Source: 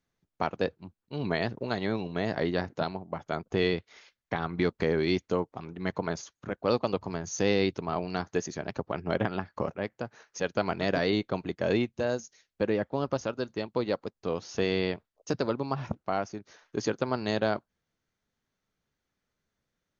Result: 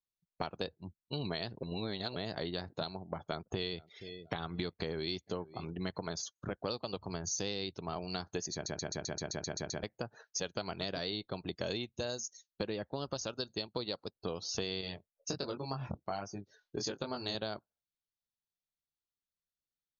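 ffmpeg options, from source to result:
-filter_complex "[0:a]asettb=1/sr,asplit=3[a][b][c];[a]atrim=end=3.114[d];[b]atrim=start=3.11:end=5.74,asetpts=PTS-STARTPTS,afade=t=in:d=0.004:c=qsin,afade=t=out:st=2.626:d=0.004:c=qsin,aecho=1:1:474|948:0.075|0.027,atrim=end_sample=115983[e];[c]atrim=start=5.736[f];[d][e]acrossfade=d=0.004:c1=hsin:c2=qsin[g];[g][f]acrossfade=d=0.004:c1=qsin:c2=hsin,asettb=1/sr,asplit=3[h][i][j];[h]atrim=end=11.544[k];[i]atrim=start=11.54:end=14.14,asetpts=PTS-STARTPTS,afade=t=in:d=0.004:c=qsin,afade=t=out:st=2.596:d=0.004:c=qsin,highshelf=f=6.1k:g=10.5[l];[j]atrim=start=14.136[m];[k][l]acrossfade=d=0.004:c1=hsin:c2=qsin[n];[n][m]acrossfade=d=0.004:c1=qsin:c2=hsin,asettb=1/sr,asplit=3[o][p][q];[o]atrim=end=14.814[r];[p]atrim=start=14.81:end=17.35,asetpts=PTS-STARTPTS,afade=t=in:d=0.004:c=qsin,afade=t=out:st=2.536:d=0.004:c=qsin,flanger=delay=20:depth=4:speed=1.3[s];[q]atrim=start=17.346[t];[r][s]acrossfade=d=0.004:c1=hsin:c2=qsin[u];[u][t]acrossfade=d=0.004:c1=qsin:c2=hsin,asplit=13[v][w][x][y][z][aa][ab][ac][ad][ae][af][ag][ah];[v]atrim=end=1.632[ai];[w]atrim=start=1.628:end=2.162,asetpts=PTS-STARTPTS,areverse[aj];[x]atrim=start=2.158:end=8.662[ak];[y]atrim=start=8.528:end=8.662[al];[z]atrim=start=8.528:end=8.662[am];[aa]atrim=start=8.528:end=8.662[an];[ab]atrim=start=8.528:end=8.662[ao];[ac]atrim=start=8.528:end=8.662[ap];[ad]atrim=start=8.528:end=8.662[aq];[ae]atrim=start=8.528:end=8.662[ar];[af]atrim=start=8.528:end=8.662[as];[ag]atrim=start=8.528:end=8.662[at];[ah]atrim=start=9.828[au];[ai][aj]acrossfade=d=0.004:c1=hsin:c2=hsin[av];[av][ak]acrossfade=d=0.004:c1=hsin:c2=hsin[aw];[aw][al]acrossfade=d=0.004:c1=hsin:c2=hsin[ax];[ax][am]acrossfade=d=0.004:c1=hsin:c2=hsin[ay];[ay][an]acrossfade=d=0.004:c1=hsin:c2=hsin[az];[az][ao]acrossfade=d=0.004:c1=hsin:c2=hsin[ba];[ba][ap]acrossfade=d=0.004:c1=hsin:c2=hsin[bb];[bb][aq]acrossfade=d=0.004:c1=hsin:c2=hsin[bc];[bc][ar]acrossfade=d=0.004:c1=hsin:c2=hsin[bd];[bd][as]acrossfade=d=0.004:c1=hsin:c2=hsin[be];[be][at]acrossfade=d=0.004:c1=hsin:c2=hsin[bf];[bf][au]acrossfade=d=0.004:c1=hsin:c2=hsin,afftdn=nr=25:nf=-52,equalizer=f=125:t=o:w=1:g=-3,equalizer=f=250:t=o:w=1:g=-6,equalizer=f=500:t=o:w=1:g=-4,equalizer=f=1k:t=o:w=1:g=-4,equalizer=f=2k:t=o:w=1:g=-8,equalizer=f=4k:t=o:w=1:g=9,acompressor=threshold=-41dB:ratio=6,volume=6.5dB"

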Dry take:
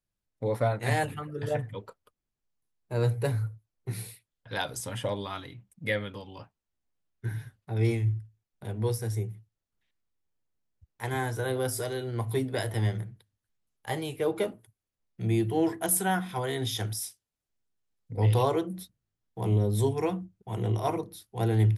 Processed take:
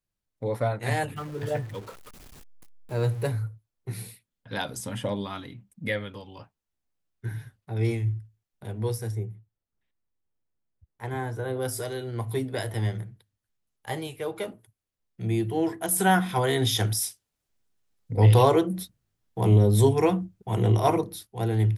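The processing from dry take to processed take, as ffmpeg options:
-filter_complex "[0:a]asettb=1/sr,asplit=3[a][b][c];[a]atrim=end=1.164[d];[b]atrim=start=1.16:end=3.28,asetpts=PTS-STARTPTS,afade=t=in:d=0.004:c=qsin,afade=t=out:st=2.116:d=0.004:c=qsin,aeval=exprs='val(0)+0.5*0.00944*sgn(val(0))':c=same[e];[c]atrim=start=3.276[f];[d][e]acrossfade=d=0.004:c1=hsin:c2=qsin[g];[g][f]acrossfade=d=0.004:c1=qsin:c2=hsin,asettb=1/sr,asplit=3[h][i][j];[h]atrim=end=4.014[k];[i]atrim=start=4.01:end=5.88,asetpts=PTS-STARTPTS,afade=t=in:d=0.004:c=qsin,afade=t=out:st=1.866:d=0.004:c=qsin,equalizer=f=220:t=o:w=0.77:g=9[l];[j]atrim=start=5.876[m];[k][l]acrossfade=d=0.004:c1=hsin:c2=qsin[n];[n][m]acrossfade=d=0.004:c1=qsin:c2=hsin,asplit=3[o][p][q];[o]afade=t=out:st=9.1:d=0.02[r];[p]highshelf=f=2.3k:g=-11,afade=t=in:st=9.1:d=0.02,afade=t=out:st=11.61:d=0.02[s];[q]afade=t=in:st=11.61:d=0.02[t];[r][s][t]amix=inputs=3:normalize=0,asettb=1/sr,asplit=3[u][v][w];[u]atrim=end=14.074[x];[v]atrim=start=14.07:end=14.48,asetpts=PTS-STARTPTS,afade=t=in:d=0.004:c=qsin,afade=t=out:st=0.406:d=0.004:c=qsin,equalizer=f=280:w=0.7:g=-6.5[y];[w]atrim=start=14.476[z];[x][y]acrossfade=d=0.004:c1=hsin:c2=qsin[aa];[aa][z]acrossfade=d=0.004:c1=qsin:c2=hsin,asplit=3[ab][ac][ad];[ab]afade=t=out:st=15.98:d=0.02[ae];[ac]acontrast=79,afade=t=in:st=15.98:d=0.02,afade=t=out:st=21.26:d=0.02[af];[ad]afade=t=in:st=21.26:d=0.02[ag];[ae][af][ag]amix=inputs=3:normalize=0"

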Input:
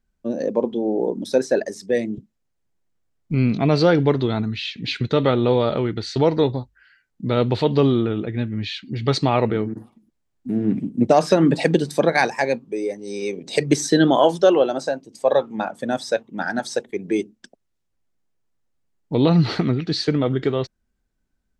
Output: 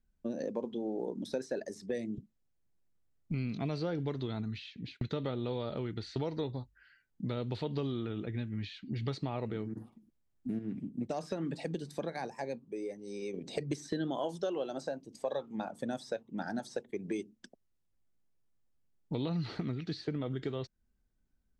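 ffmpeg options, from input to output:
-filter_complex "[0:a]asplit=4[a][b][c][d];[a]atrim=end=5.01,asetpts=PTS-STARTPTS,afade=t=out:st=4.41:d=0.6:c=qsin[e];[b]atrim=start=5.01:end=10.592,asetpts=PTS-STARTPTS,afade=t=in:d=0.004:c=hsin[f];[c]atrim=start=10.588:end=13.342,asetpts=PTS-STARTPTS,volume=-6.5dB[g];[d]atrim=start=13.338[h];[e][f]concat=n=2:v=0:a=1[i];[i][g]acrossfade=d=0.004:c1=hsin:c2=hsin[j];[j][h]acrossfade=d=0.004:c1=hsin:c2=hsin,lowshelf=f=320:g=6,acrossover=split=1100|3700[k][l][m];[k]acompressor=threshold=-26dB:ratio=4[n];[l]acompressor=threshold=-43dB:ratio=4[o];[m]acompressor=threshold=-46dB:ratio=4[p];[n][o][p]amix=inputs=3:normalize=0,volume=-8.5dB"

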